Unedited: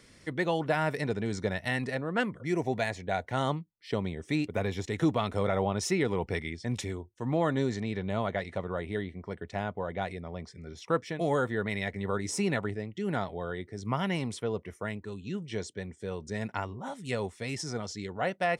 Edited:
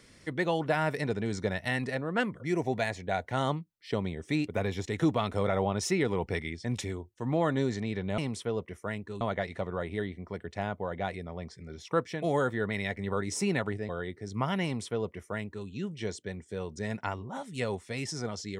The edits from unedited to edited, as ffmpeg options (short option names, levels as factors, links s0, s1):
-filter_complex "[0:a]asplit=4[s0][s1][s2][s3];[s0]atrim=end=8.182[s4];[s1]atrim=start=14.148:end=15.182[s5];[s2]atrim=start=8.178:end=12.862[s6];[s3]atrim=start=13.398[s7];[s4][s5]acrossfade=d=0.004:c1=hsin:c2=hsin[s8];[s8][s6]acrossfade=d=0.004:c1=hsin:c2=hsin[s9];[s9][s7]acrossfade=d=0.004:c1=hsin:c2=hsin"